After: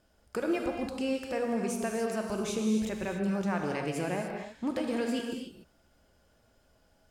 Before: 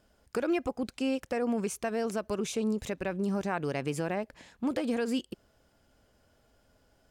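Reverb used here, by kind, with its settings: gated-style reverb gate 320 ms flat, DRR 1.5 dB; trim -2 dB

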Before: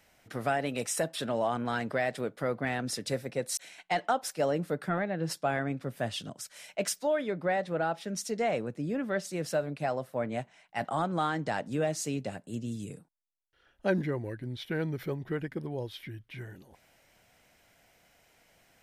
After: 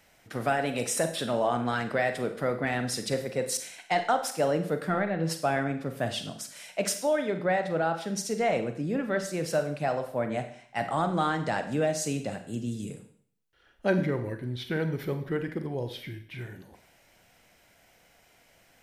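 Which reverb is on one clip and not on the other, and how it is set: Schroeder reverb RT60 0.56 s, combs from 33 ms, DRR 7.5 dB; trim +2.5 dB

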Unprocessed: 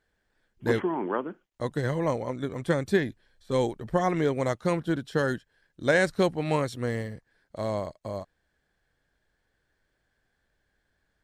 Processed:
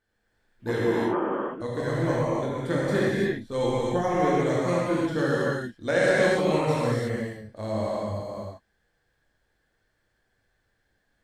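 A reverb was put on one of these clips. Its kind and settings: gated-style reverb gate 370 ms flat, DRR -7.5 dB; trim -5.5 dB

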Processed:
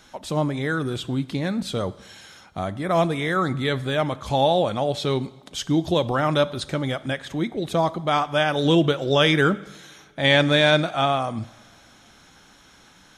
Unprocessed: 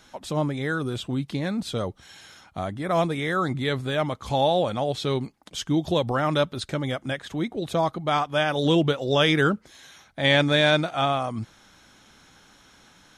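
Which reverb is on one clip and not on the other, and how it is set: two-slope reverb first 0.85 s, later 3.1 s, from -18 dB, DRR 15.5 dB; trim +2 dB

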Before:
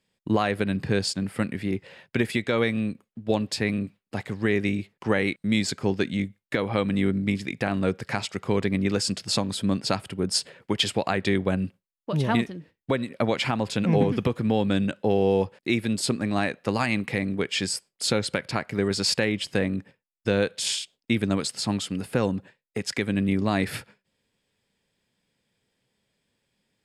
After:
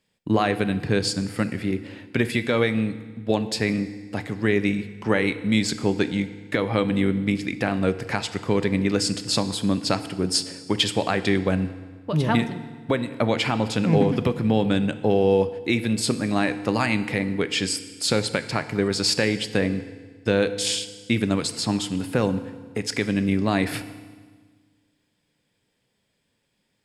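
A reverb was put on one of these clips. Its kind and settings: FDN reverb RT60 1.5 s, low-frequency decay 1.3×, high-frequency decay 0.9×, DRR 11 dB; trim +2 dB

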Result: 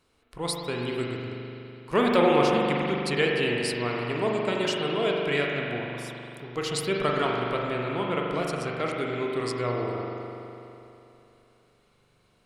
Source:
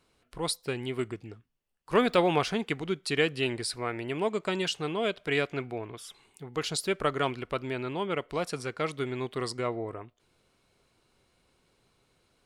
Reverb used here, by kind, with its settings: spring tank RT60 3 s, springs 41 ms, chirp 65 ms, DRR -1.5 dB

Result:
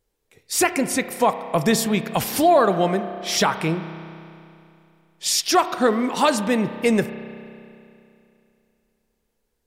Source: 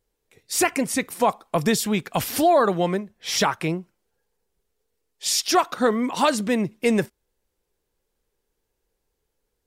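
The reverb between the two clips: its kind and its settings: spring tank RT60 2.7 s, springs 31 ms, chirp 60 ms, DRR 10.5 dB; trim +1.5 dB

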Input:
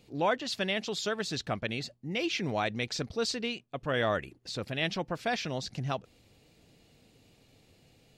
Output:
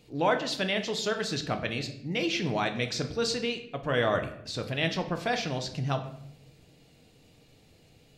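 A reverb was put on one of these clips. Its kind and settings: simulated room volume 170 m³, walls mixed, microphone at 0.5 m; trim +1.5 dB

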